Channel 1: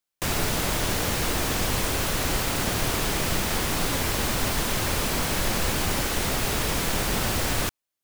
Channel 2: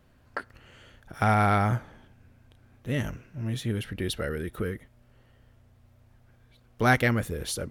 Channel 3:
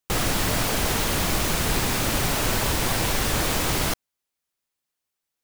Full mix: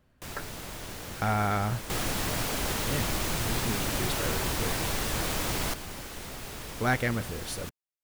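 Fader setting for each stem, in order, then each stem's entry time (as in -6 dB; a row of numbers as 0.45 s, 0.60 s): -14.5 dB, -5.0 dB, -7.0 dB; 0.00 s, 0.00 s, 1.80 s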